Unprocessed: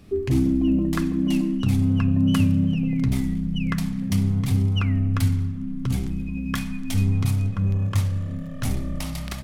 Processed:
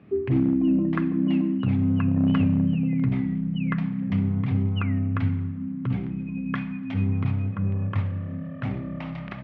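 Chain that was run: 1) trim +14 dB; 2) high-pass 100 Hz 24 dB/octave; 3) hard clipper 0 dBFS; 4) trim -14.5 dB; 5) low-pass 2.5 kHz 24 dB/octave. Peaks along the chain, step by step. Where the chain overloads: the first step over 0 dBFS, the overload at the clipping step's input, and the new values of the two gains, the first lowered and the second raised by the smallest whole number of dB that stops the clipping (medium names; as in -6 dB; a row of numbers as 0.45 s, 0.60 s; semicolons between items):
+4.5 dBFS, +4.0 dBFS, 0.0 dBFS, -14.5 dBFS, -14.0 dBFS; step 1, 4.0 dB; step 1 +10 dB, step 4 -10.5 dB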